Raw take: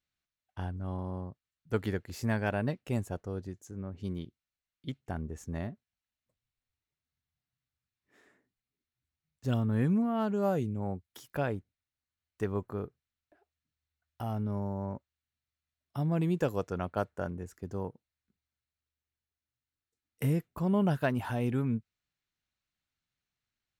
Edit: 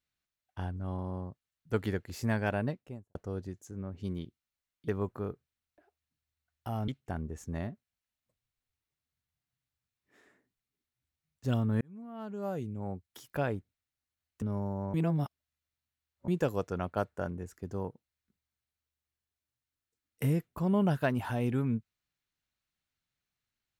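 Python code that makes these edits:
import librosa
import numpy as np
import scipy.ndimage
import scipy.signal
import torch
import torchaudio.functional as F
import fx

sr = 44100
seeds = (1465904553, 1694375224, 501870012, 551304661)

y = fx.studio_fade_out(x, sr, start_s=2.52, length_s=0.63)
y = fx.edit(y, sr, fx.fade_in_span(start_s=9.81, length_s=1.49),
    fx.move(start_s=12.42, length_s=2.0, to_s=4.88),
    fx.reverse_span(start_s=14.94, length_s=1.34), tone=tone)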